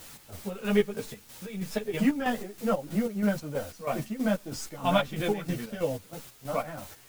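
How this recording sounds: a quantiser's noise floor 8-bit, dither triangular; chopped level 3.1 Hz, depth 60%, duty 50%; a shimmering, thickened sound

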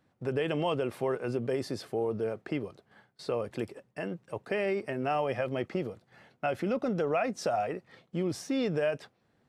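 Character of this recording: noise floor -72 dBFS; spectral tilt -5.0 dB/octave

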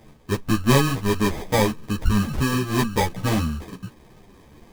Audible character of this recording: aliases and images of a low sample rate 1.4 kHz, jitter 0%; a shimmering, thickened sound

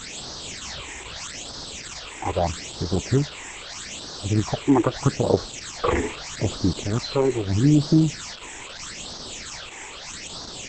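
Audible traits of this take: a quantiser's noise floor 6-bit, dither triangular; phasing stages 8, 0.79 Hz, lowest notch 170–2400 Hz; Opus

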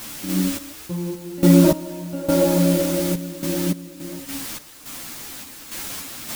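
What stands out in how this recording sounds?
a quantiser's noise floor 6-bit, dither triangular; random-step tremolo, depth 90%; a shimmering, thickened sound

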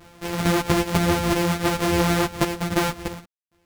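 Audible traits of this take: a buzz of ramps at a fixed pitch in blocks of 256 samples; random-step tremolo 3.7 Hz, depth 100%; a shimmering, thickened sound

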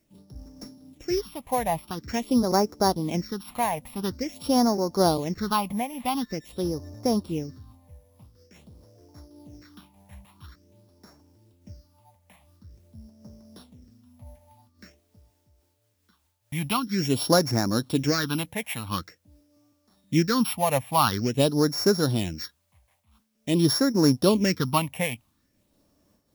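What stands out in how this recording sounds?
a buzz of ramps at a fixed pitch in blocks of 8 samples; phasing stages 6, 0.47 Hz, lowest notch 350–3100 Hz; a quantiser's noise floor 12-bit, dither triangular; random flutter of the level

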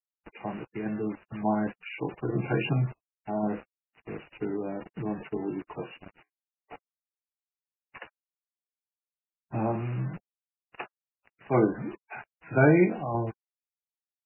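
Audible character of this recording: random-step tremolo; a quantiser's noise floor 8-bit, dither none; MP3

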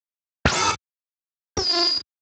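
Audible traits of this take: a quantiser's noise floor 6-bit, dither none; Speex

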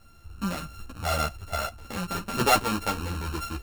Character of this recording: a buzz of ramps at a fixed pitch in blocks of 32 samples; a shimmering, thickened sound

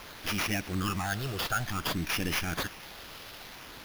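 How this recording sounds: a quantiser's noise floor 8-bit, dither triangular; phasing stages 8, 0.55 Hz, lowest notch 250–1300 Hz; aliases and images of a low sample rate 8.1 kHz, jitter 0%

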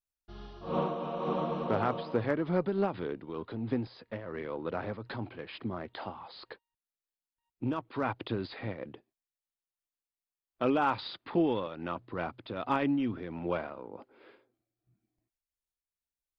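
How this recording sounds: random flutter of the level

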